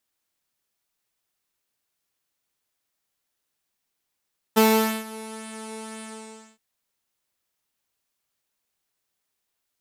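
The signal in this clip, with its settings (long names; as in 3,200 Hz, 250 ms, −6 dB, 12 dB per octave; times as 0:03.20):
subtractive patch with pulse-width modulation A4, detune 20 cents, sub −2 dB, filter lowpass, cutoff 7,200 Hz, Q 6.1, filter envelope 1 octave, filter decay 0.87 s, attack 18 ms, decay 0.46 s, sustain −21.5 dB, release 0.57 s, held 1.45 s, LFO 1.9 Hz, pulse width 18%, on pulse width 11%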